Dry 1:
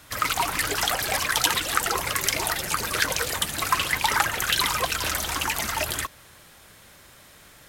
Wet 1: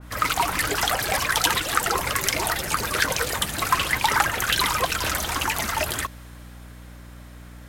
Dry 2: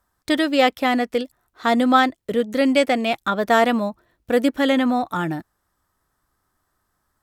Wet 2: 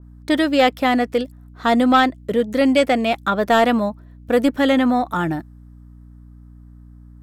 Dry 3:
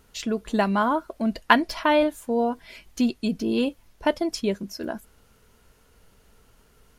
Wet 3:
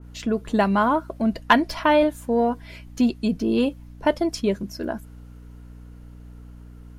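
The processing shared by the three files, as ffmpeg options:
ffmpeg -i in.wav -filter_complex "[0:a]acrossover=split=2000[link_01][link_02];[link_01]acontrast=80[link_03];[link_03][link_02]amix=inputs=2:normalize=0,aeval=exprs='val(0)+0.0141*(sin(2*PI*60*n/s)+sin(2*PI*2*60*n/s)/2+sin(2*PI*3*60*n/s)/3+sin(2*PI*4*60*n/s)/4+sin(2*PI*5*60*n/s)/5)':channel_layout=same,adynamicequalizer=threshold=0.0316:dfrequency=2300:dqfactor=0.7:tfrequency=2300:tqfactor=0.7:attack=5:release=100:ratio=0.375:range=2:mode=boostabove:tftype=highshelf,volume=-4dB" out.wav

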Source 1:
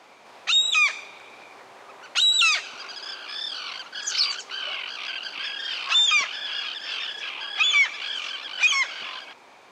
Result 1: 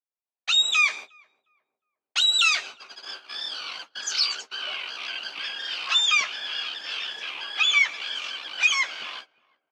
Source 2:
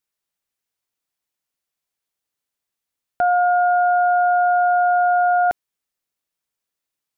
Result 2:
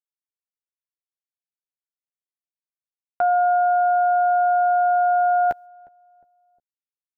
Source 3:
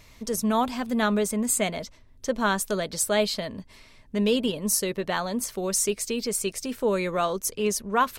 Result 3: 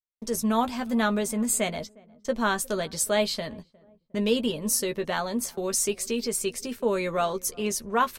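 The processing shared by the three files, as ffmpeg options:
ffmpeg -i in.wav -filter_complex "[0:a]agate=range=-56dB:threshold=-36dB:ratio=16:detection=peak,asplit=2[link_01][link_02];[link_02]adelay=13,volume=-8.5dB[link_03];[link_01][link_03]amix=inputs=2:normalize=0,asplit=2[link_04][link_05];[link_05]adelay=358,lowpass=frequency=800:poles=1,volume=-23.5dB,asplit=2[link_06][link_07];[link_07]adelay=358,lowpass=frequency=800:poles=1,volume=0.46,asplit=2[link_08][link_09];[link_09]adelay=358,lowpass=frequency=800:poles=1,volume=0.46[link_10];[link_04][link_06][link_08][link_10]amix=inputs=4:normalize=0,volume=-1.5dB" out.wav

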